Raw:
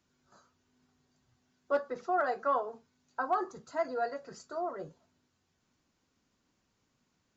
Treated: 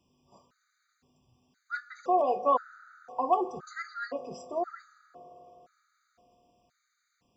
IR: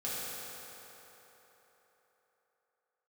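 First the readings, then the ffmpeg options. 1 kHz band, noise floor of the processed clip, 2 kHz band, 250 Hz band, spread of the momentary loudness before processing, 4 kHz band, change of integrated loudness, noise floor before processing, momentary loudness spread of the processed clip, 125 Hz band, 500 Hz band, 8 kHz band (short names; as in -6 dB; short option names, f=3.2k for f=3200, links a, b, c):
+4.0 dB, -78 dBFS, 0.0 dB, +3.5 dB, 13 LU, +2.5 dB, +3.0 dB, -78 dBFS, 14 LU, +1.0 dB, +2.0 dB, n/a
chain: -filter_complex "[0:a]asplit=2[a][b];[1:a]atrim=start_sample=2205,lowpass=5.3k[c];[b][c]afir=irnorm=-1:irlink=0,volume=-19dB[d];[a][d]amix=inputs=2:normalize=0,afftfilt=real='re*gt(sin(2*PI*0.97*pts/sr)*(1-2*mod(floor(b*sr/1024/1200),2)),0)':imag='im*gt(sin(2*PI*0.97*pts/sr)*(1-2*mod(floor(b*sr/1024/1200),2)),0)':win_size=1024:overlap=0.75,volume=5dB"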